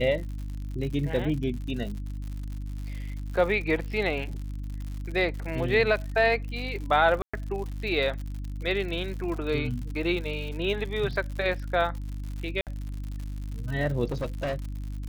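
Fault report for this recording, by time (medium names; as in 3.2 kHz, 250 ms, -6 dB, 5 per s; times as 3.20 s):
crackle 110 per s -35 dBFS
hum 50 Hz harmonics 6 -34 dBFS
7.22–7.33 s: dropout 115 ms
12.61–12.67 s: dropout 58 ms
14.11–14.65 s: clipped -25.5 dBFS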